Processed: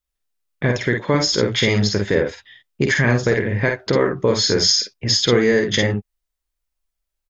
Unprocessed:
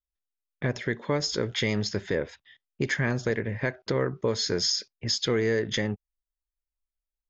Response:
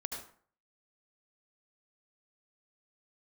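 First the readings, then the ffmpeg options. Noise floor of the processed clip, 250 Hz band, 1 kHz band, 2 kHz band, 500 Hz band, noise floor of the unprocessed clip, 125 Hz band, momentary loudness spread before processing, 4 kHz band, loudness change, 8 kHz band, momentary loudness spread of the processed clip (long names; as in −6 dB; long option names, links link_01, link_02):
−81 dBFS, +9.5 dB, +10.0 dB, +10.0 dB, +9.5 dB, below −85 dBFS, +9.5 dB, 7 LU, +10.0 dB, +9.5 dB, can't be measured, 7 LU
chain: -af "aecho=1:1:49|59:0.596|0.299,volume=8.5dB"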